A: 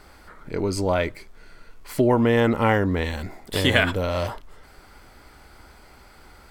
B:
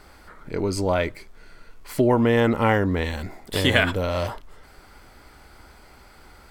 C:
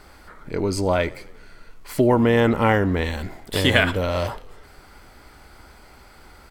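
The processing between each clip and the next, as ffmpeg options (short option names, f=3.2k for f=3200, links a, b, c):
-af anull
-filter_complex "[0:a]asplit=6[a][b][c][d][e][f];[b]adelay=89,afreqshift=-40,volume=-22dB[g];[c]adelay=178,afreqshift=-80,volume=-26dB[h];[d]adelay=267,afreqshift=-120,volume=-30dB[i];[e]adelay=356,afreqshift=-160,volume=-34dB[j];[f]adelay=445,afreqshift=-200,volume=-38.1dB[k];[a][g][h][i][j][k]amix=inputs=6:normalize=0,volume=1.5dB"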